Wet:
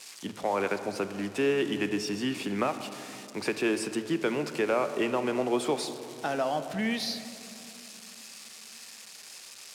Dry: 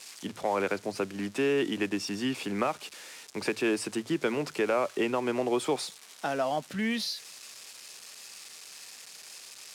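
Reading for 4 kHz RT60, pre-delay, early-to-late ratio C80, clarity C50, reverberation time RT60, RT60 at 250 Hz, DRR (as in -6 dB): 1.8 s, 26 ms, 11.0 dB, 10.0 dB, 3.0 s, 3.6 s, 9.5 dB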